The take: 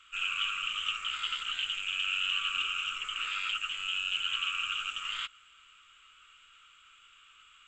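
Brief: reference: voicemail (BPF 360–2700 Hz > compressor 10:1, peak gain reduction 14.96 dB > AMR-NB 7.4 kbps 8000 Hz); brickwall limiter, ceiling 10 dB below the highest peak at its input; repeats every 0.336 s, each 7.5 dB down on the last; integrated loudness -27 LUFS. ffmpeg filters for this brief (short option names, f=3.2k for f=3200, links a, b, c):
-af "alimiter=level_in=3.5dB:limit=-24dB:level=0:latency=1,volume=-3.5dB,highpass=360,lowpass=2.7k,aecho=1:1:336|672|1008|1344|1680:0.422|0.177|0.0744|0.0312|0.0131,acompressor=threshold=-50dB:ratio=10,volume=27dB" -ar 8000 -c:a libopencore_amrnb -b:a 7400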